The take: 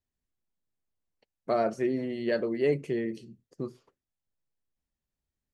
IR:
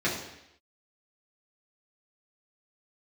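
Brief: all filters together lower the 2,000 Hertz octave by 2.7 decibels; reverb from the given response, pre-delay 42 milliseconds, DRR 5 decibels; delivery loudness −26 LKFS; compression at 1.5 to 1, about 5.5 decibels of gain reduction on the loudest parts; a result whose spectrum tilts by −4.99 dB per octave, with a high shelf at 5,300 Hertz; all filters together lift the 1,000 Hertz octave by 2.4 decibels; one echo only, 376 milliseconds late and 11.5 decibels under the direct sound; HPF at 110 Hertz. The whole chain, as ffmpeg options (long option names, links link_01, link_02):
-filter_complex "[0:a]highpass=110,equalizer=frequency=1000:width_type=o:gain=5.5,equalizer=frequency=2000:width_type=o:gain=-4,highshelf=frequency=5300:gain=-7,acompressor=threshold=-36dB:ratio=1.5,aecho=1:1:376:0.266,asplit=2[link_01][link_02];[1:a]atrim=start_sample=2205,adelay=42[link_03];[link_02][link_03]afir=irnorm=-1:irlink=0,volume=-16.5dB[link_04];[link_01][link_04]amix=inputs=2:normalize=0,volume=6dB"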